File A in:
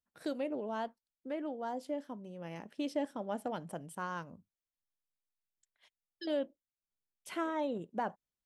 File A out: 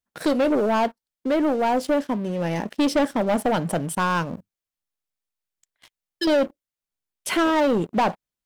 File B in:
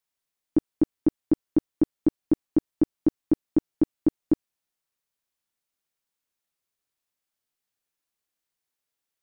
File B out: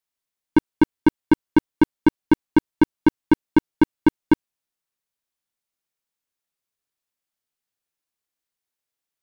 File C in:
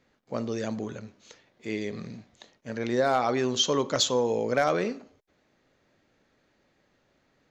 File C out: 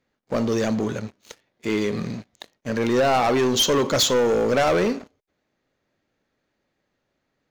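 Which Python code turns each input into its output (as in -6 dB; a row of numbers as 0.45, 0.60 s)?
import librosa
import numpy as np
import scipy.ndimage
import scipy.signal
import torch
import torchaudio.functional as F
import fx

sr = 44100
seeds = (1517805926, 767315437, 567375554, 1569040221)

y = fx.leveller(x, sr, passes=3)
y = y * 10.0 ** (-24 / 20.0) / np.sqrt(np.mean(np.square(y)))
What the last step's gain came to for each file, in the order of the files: +9.5, +4.5, -1.0 dB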